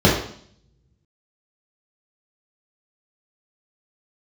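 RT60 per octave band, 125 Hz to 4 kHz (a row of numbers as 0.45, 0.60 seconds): 1.0, 0.75, 0.60, 0.55, 0.55, 0.65 seconds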